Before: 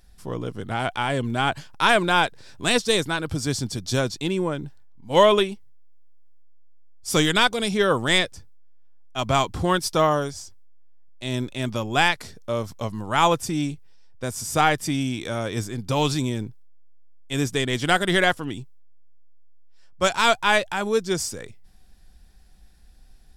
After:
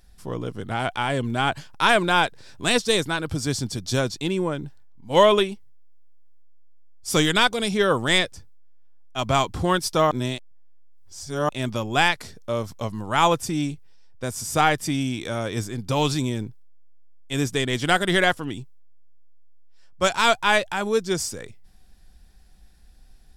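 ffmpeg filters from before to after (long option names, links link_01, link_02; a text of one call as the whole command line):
ffmpeg -i in.wav -filter_complex "[0:a]asplit=3[link_01][link_02][link_03];[link_01]atrim=end=10.112[link_04];[link_02]atrim=start=10.108:end=11.492,asetpts=PTS-STARTPTS,areverse[link_05];[link_03]atrim=start=11.488[link_06];[link_04][link_05]acrossfade=duration=0.004:curve1=hsin:curve2=hsin[link_07];[link_07][link_06]acrossfade=duration=0.004:curve1=hsin:curve2=hsin" out.wav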